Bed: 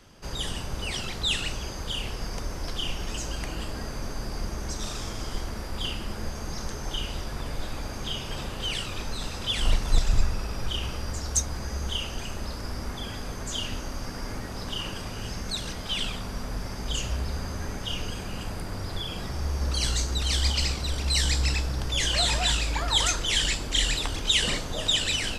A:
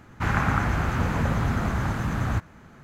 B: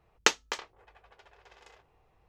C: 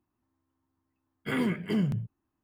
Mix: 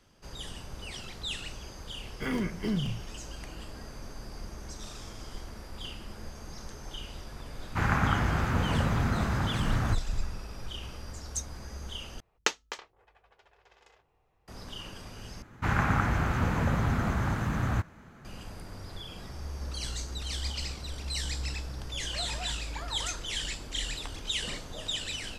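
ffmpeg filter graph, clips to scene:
-filter_complex "[1:a]asplit=2[s0][s1];[0:a]volume=0.335,asplit=3[s2][s3][s4];[s2]atrim=end=12.204[s5];[2:a]atrim=end=2.28,asetpts=PTS-STARTPTS,volume=0.596[s6];[s3]atrim=start=14.476:end=15.424[s7];[s1]atrim=end=2.83,asetpts=PTS-STARTPTS,volume=0.708[s8];[s4]atrim=start=18.246[s9];[3:a]atrim=end=2.43,asetpts=PTS-STARTPTS,volume=0.708,afade=t=in:d=0.004:c=hsin,afade=t=out:st=2.426:d=0.004:c=hsin,adelay=940[s10];[s0]atrim=end=2.83,asetpts=PTS-STARTPTS,volume=0.708,afade=t=in:d=0.004:c=hsin,afade=t=out:st=2.826:d=0.004:c=hsin,adelay=7550[s11];[s5][s6]acrossfade=d=0.004:c1=hsin:c2=hsin[s12];[s12][s7]acrossfade=d=0.004:c1=hsin:c2=hsin[s13];[s13][s8]acrossfade=d=0.004:c1=hsin:c2=hsin[s14];[s14][s9]acrossfade=d=0.004:c1=hsin:c2=hsin[s15];[s15][s10][s11]amix=inputs=3:normalize=0"

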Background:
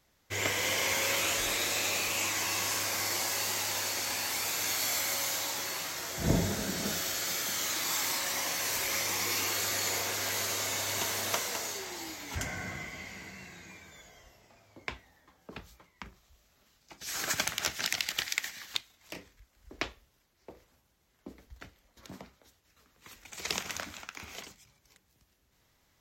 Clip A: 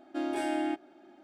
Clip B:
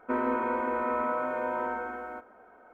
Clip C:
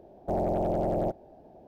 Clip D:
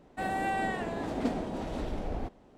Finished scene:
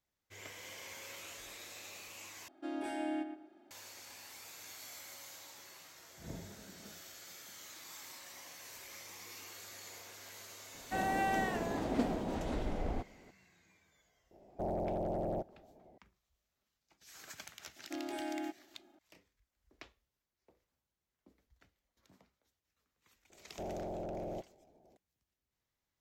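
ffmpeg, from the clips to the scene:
-filter_complex "[1:a]asplit=2[s0][s1];[3:a]asplit=2[s2][s3];[0:a]volume=0.112[s4];[s0]asplit=2[s5][s6];[s6]adelay=116,lowpass=f=2000:p=1,volume=0.447,asplit=2[s7][s8];[s8]adelay=116,lowpass=f=2000:p=1,volume=0.28,asplit=2[s9][s10];[s10]adelay=116,lowpass=f=2000:p=1,volume=0.28[s11];[s5][s7][s9][s11]amix=inputs=4:normalize=0[s12];[s3]equalizer=f=410:w=1.5:g=2.5[s13];[s4]asplit=2[s14][s15];[s14]atrim=end=2.484[s16];[s12]atrim=end=1.23,asetpts=PTS-STARTPTS,volume=0.398[s17];[s15]atrim=start=3.706[s18];[4:a]atrim=end=2.57,asetpts=PTS-STARTPTS,volume=0.794,afade=t=in:d=0.004:c=hsin,afade=t=out:st=2.566:d=0.004:c=hsin,adelay=473634S[s19];[s2]atrim=end=1.67,asetpts=PTS-STARTPTS,volume=0.376,afade=t=in:d=0.004:c=hsin,afade=t=out:st=1.666:d=0.004:c=hsin,adelay=14310[s20];[s1]atrim=end=1.23,asetpts=PTS-STARTPTS,volume=0.355,afade=t=in:d=0.004:c=hsin,afade=t=out:st=1.226:d=0.004:c=hsin,adelay=17760[s21];[s13]atrim=end=1.67,asetpts=PTS-STARTPTS,volume=0.188,afade=t=in:d=0.004:c=hsin,afade=t=out:st=1.666:d=0.004:c=hsin,adelay=23300[s22];[s16][s17]acrossfade=d=0.004:c1=hsin:c2=hsin[s23];[s23][s18]acrossfade=d=0.004:c1=hsin:c2=hsin[s24];[s24][s19][s20][s21][s22]amix=inputs=5:normalize=0"

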